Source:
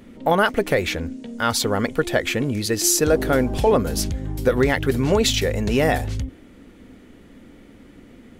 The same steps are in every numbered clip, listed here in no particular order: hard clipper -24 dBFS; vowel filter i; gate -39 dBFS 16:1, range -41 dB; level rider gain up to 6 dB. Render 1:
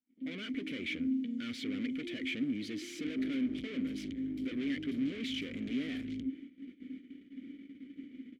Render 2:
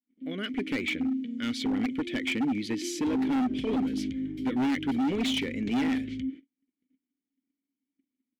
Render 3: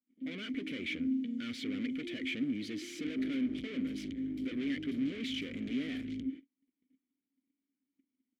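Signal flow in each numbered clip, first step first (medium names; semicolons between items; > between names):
level rider > gate > hard clipper > vowel filter; gate > vowel filter > level rider > hard clipper; gate > level rider > hard clipper > vowel filter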